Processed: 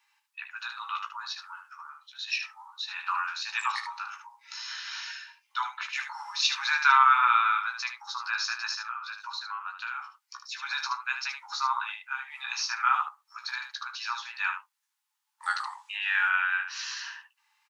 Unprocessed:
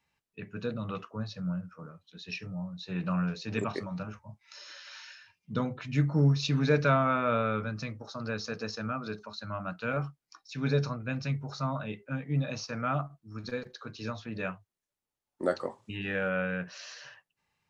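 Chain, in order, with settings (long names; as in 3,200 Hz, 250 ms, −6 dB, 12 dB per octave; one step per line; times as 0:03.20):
Chebyshev high-pass filter 830 Hz, order 8
0:08.71–0:10.71: downward compressor 12 to 1, threshold −42 dBFS, peak gain reduction 11 dB
ambience of single reflections 16 ms −6.5 dB, 75 ms −7.5 dB
level +8.5 dB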